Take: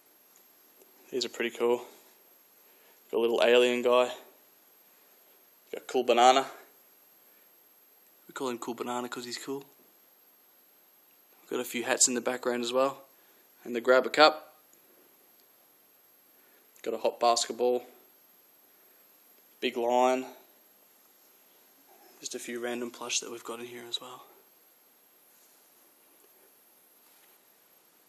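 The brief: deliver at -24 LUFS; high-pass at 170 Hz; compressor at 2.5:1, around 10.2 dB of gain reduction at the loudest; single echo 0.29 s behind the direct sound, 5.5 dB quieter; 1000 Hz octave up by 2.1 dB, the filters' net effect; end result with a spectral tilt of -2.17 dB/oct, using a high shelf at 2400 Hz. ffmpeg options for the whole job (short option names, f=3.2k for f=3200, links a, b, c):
-af "highpass=170,equalizer=f=1k:t=o:g=4.5,highshelf=f=2.4k:g=-7.5,acompressor=threshold=-29dB:ratio=2.5,aecho=1:1:290:0.531,volume=10dB"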